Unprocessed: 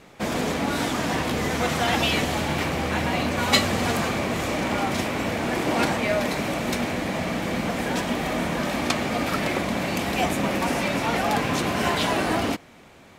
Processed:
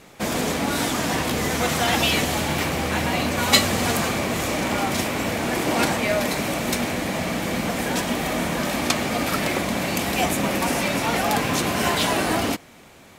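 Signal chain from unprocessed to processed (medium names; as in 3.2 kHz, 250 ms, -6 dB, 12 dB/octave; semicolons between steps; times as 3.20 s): treble shelf 6.3 kHz +9.5 dB; trim +1 dB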